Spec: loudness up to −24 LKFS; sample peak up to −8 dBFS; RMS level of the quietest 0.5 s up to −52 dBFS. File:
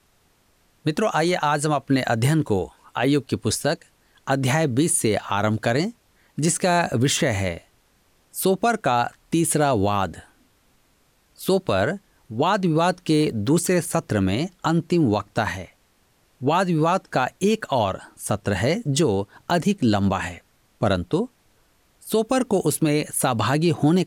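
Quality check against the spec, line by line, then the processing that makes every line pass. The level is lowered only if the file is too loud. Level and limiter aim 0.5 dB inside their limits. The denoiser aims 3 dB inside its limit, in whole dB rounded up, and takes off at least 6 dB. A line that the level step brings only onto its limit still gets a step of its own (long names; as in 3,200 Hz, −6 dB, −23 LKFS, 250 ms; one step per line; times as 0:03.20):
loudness −22.5 LKFS: out of spec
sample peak −10.0 dBFS: in spec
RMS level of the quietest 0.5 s −62 dBFS: in spec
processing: level −2 dB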